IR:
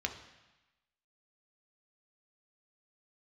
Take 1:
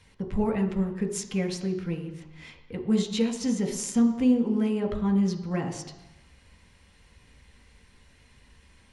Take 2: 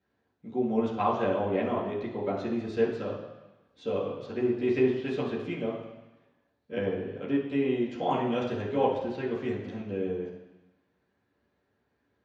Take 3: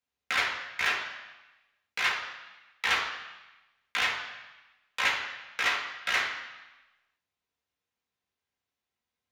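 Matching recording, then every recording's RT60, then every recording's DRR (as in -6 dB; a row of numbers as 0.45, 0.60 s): 1; 1.0, 1.0, 1.0 s; 4.0, -9.0, -4.5 dB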